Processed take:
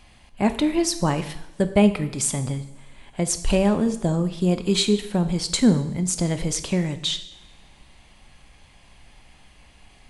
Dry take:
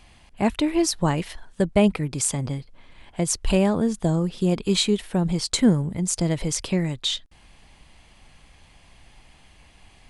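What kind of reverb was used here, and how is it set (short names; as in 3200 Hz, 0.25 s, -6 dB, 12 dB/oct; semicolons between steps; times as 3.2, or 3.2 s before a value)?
two-slope reverb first 0.74 s, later 2.3 s, from -19 dB, DRR 8.5 dB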